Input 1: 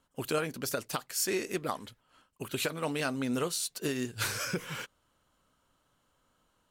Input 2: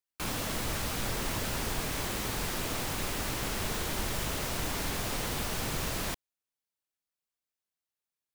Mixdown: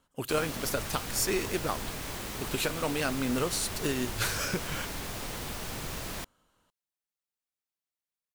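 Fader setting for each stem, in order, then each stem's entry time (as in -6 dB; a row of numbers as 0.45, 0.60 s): +1.5, -4.0 dB; 0.00, 0.10 s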